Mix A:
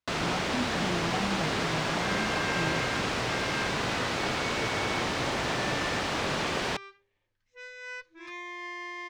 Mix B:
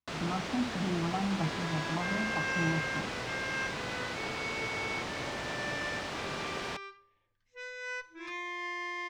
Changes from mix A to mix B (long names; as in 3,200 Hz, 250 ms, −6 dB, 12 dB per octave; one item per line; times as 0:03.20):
first sound −8.0 dB
reverb: on, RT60 0.70 s